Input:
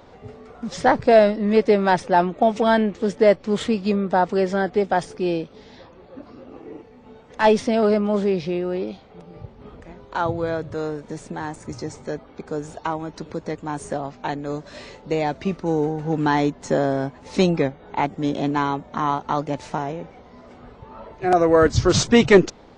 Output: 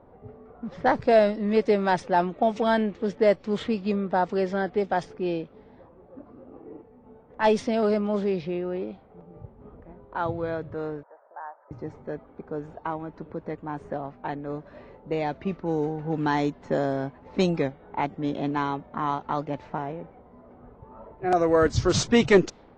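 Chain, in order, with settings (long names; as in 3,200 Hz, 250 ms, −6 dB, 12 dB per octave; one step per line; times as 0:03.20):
0:11.03–0:11.71: elliptic band-pass filter 590–1,600 Hz, stop band 80 dB
low-pass that shuts in the quiet parts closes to 1,000 Hz, open at −12.5 dBFS
level −5 dB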